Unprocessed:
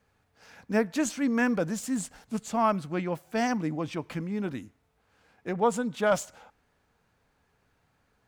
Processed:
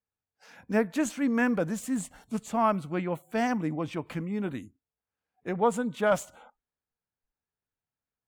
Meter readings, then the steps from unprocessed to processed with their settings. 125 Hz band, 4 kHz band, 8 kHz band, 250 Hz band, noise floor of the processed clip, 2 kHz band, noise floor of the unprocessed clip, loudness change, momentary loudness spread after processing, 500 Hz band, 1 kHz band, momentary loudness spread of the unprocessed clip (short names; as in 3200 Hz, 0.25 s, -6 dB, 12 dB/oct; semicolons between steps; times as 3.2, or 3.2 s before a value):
0.0 dB, -3.0 dB, -3.0 dB, 0.0 dB, under -85 dBFS, -0.5 dB, -71 dBFS, 0.0 dB, 10 LU, 0.0 dB, 0.0 dB, 10 LU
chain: spectral noise reduction 26 dB; dynamic EQ 5200 Hz, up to -7 dB, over -54 dBFS, Q 1.5